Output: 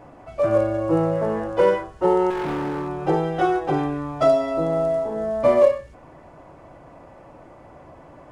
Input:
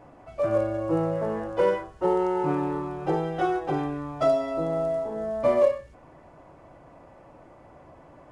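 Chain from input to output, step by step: 2.30–2.89 s: hard clipper -28.5 dBFS, distortion -17 dB; trim +5 dB

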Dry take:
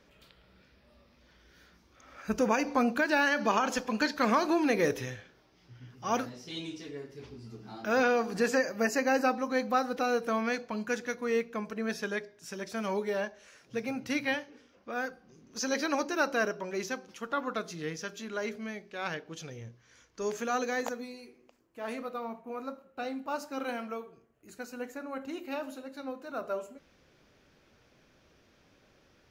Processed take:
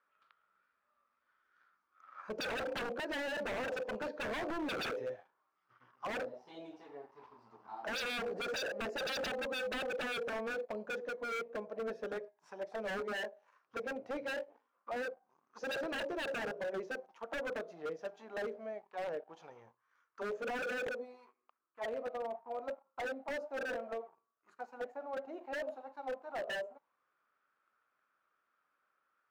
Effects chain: waveshaping leveller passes 2; auto-wah 530–1300 Hz, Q 5.6, down, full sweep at -25 dBFS; wavefolder -34 dBFS; trim +1 dB

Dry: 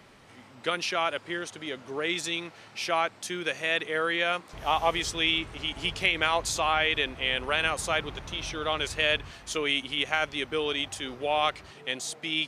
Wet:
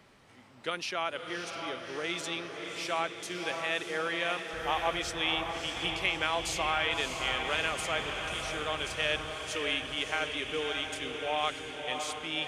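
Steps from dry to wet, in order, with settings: echo that smears into a reverb 614 ms, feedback 64%, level -5.5 dB; trim -5.5 dB

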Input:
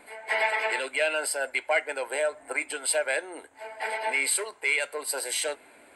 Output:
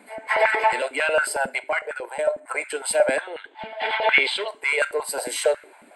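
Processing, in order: dynamic bell 730 Hz, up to +5 dB, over -37 dBFS, Q 0.96; 1.58–2.46 s: level held to a coarse grid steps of 12 dB; 3.21–4.48 s: resonant low-pass 3.4 kHz, resonance Q 7.3; Schroeder reverb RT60 0.39 s, combs from 28 ms, DRR 18 dB; step-sequenced high-pass 11 Hz 210–1500 Hz

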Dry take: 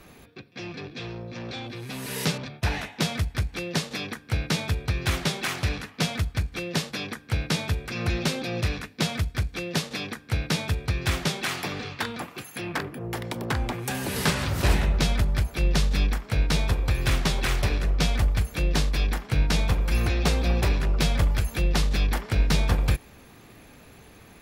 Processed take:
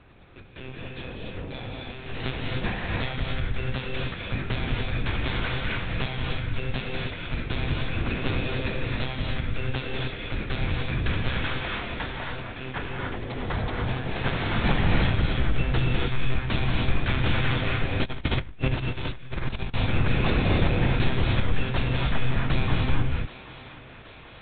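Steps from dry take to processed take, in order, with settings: monotone LPC vocoder at 8 kHz 130 Hz; thinning echo 776 ms, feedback 68%, high-pass 340 Hz, level -15 dB; gated-style reverb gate 320 ms rising, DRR -1.5 dB; 18.04–19.74 s: compressor with a negative ratio -24 dBFS, ratio -0.5; trim -3 dB

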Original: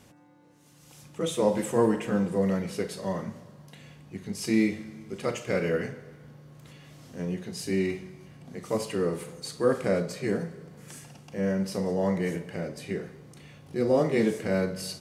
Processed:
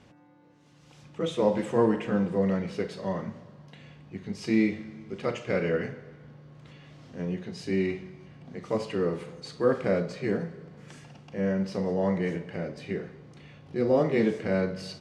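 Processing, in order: low-pass 4.2 kHz 12 dB/octave

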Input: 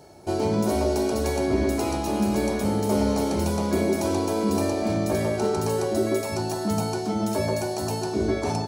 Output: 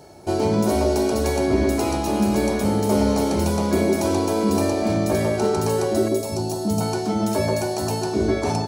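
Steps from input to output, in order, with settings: 6.08–6.81 s: peaking EQ 1.7 kHz -14 dB 1.3 oct; trim +3.5 dB

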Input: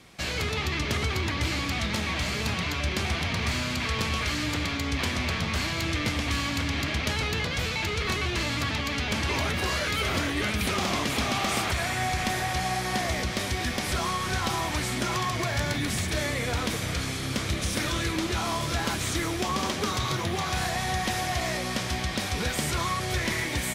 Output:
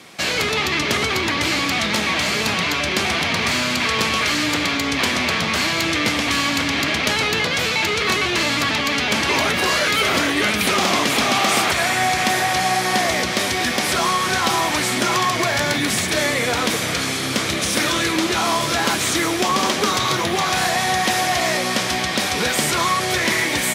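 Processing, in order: Bessel high-pass 240 Hz, order 2; in parallel at -10 dB: saturation -25.5 dBFS, distortion -15 dB; on the sum: trim +8.5 dB

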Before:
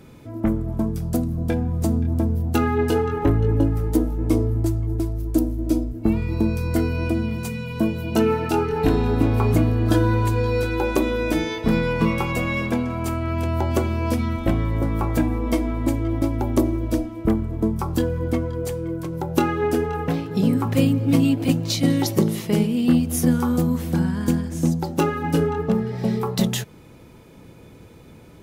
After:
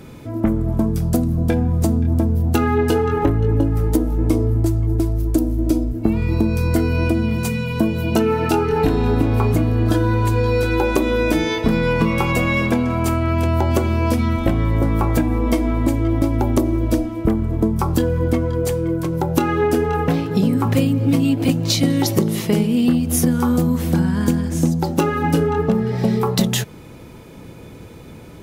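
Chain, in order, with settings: compression, threshold -20 dBFS, peak gain reduction 8 dB; trim +7 dB

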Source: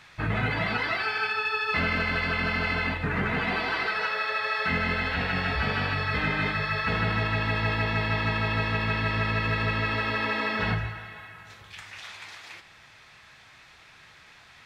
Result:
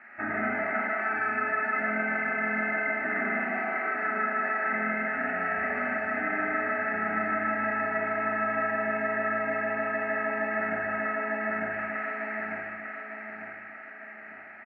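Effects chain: cabinet simulation 220–2300 Hz, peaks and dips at 230 Hz +8 dB, 440 Hz +6 dB, 640 Hz +6 dB, 1.2 kHz +8 dB, 1.9 kHz +6 dB; static phaser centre 710 Hz, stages 8; on a send: feedback delay 899 ms, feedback 40%, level -5.5 dB; on the sum: compression 6:1, threshold -31 dBFS, peak gain reduction 11 dB; Schroeder reverb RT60 1.1 s, combs from 29 ms, DRR -2 dB

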